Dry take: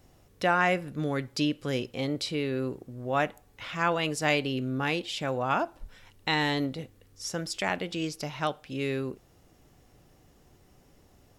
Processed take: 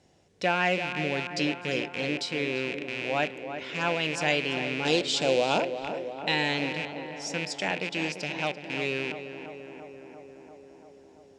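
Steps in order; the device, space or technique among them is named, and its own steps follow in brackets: car door speaker with a rattle (rattle on loud lows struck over -43 dBFS, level -21 dBFS; cabinet simulation 110–8100 Hz, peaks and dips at 120 Hz -8 dB, 260 Hz -4 dB, 1.2 kHz -10 dB); 4.85–5.60 s: ten-band graphic EQ 250 Hz +4 dB, 500 Hz +9 dB, 2 kHz -8 dB, 4 kHz +9 dB, 8 kHz +10 dB; tape echo 342 ms, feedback 82%, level -8 dB, low-pass 1.9 kHz

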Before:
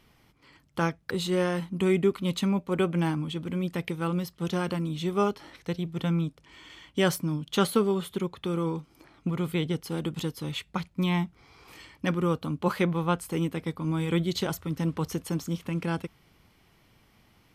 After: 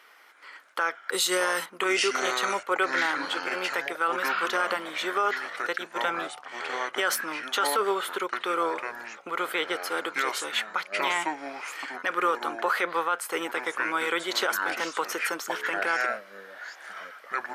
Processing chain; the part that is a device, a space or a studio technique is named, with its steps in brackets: 1.12–1.66 s: tone controls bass +8 dB, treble +14 dB; ever faster or slower copies 285 ms, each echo -6 st, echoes 3, each echo -6 dB; laptop speaker (high-pass 450 Hz 24 dB/octave; peaking EQ 1.4 kHz +10.5 dB 0.57 oct; peaking EQ 1.9 kHz +5 dB 0.49 oct; peak limiter -20.5 dBFS, peak gain reduction 13 dB); trim +5.5 dB

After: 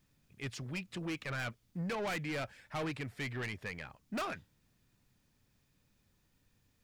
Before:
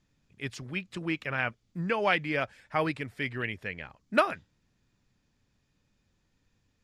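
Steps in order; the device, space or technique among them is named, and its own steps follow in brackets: open-reel tape (saturation -32.5 dBFS, distortion -4 dB; peaking EQ 130 Hz +2 dB; white noise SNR 40 dB); trim -1.5 dB

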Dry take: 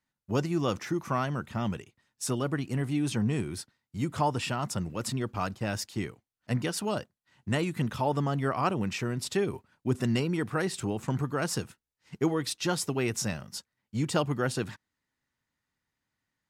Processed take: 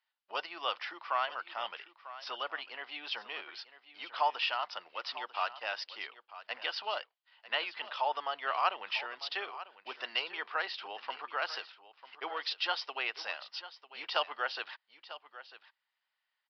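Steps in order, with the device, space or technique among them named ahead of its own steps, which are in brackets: musical greeting card (resampled via 11.025 kHz; high-pass 690 Hz 24 dB/octave; peaking EQ 3 kHz +6.5 dB 0.36 oct); delay 946 ms -15 dB

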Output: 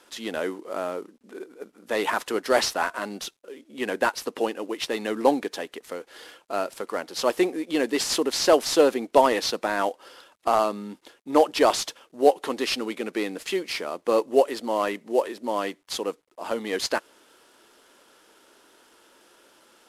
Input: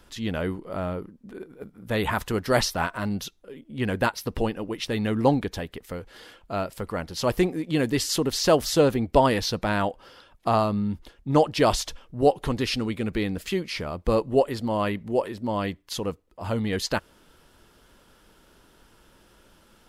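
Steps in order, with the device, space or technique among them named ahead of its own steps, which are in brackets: early wireless headset (high-pass 290 Hz 24 dB/octave; CVSD coder 64 kbps); trim +2 dB

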